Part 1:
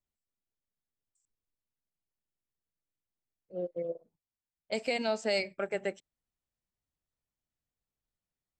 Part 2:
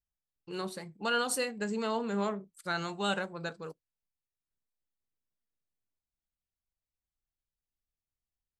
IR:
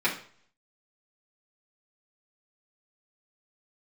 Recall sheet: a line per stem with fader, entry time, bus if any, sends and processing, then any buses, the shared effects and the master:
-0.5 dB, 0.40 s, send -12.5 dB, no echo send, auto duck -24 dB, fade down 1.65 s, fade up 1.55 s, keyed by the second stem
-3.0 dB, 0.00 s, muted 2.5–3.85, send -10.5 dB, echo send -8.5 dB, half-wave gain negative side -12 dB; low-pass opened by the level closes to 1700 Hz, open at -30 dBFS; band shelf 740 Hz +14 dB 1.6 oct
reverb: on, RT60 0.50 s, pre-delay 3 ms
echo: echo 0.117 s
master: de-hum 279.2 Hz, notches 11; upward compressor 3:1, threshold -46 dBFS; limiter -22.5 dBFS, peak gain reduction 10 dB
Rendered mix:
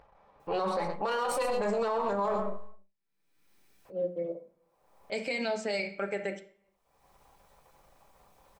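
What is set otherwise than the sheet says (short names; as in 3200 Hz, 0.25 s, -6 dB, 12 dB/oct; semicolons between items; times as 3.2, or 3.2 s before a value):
stem 2 -3.0 dB -> +7.0 dB; master: missing de-hum 279.2 Hz, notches 11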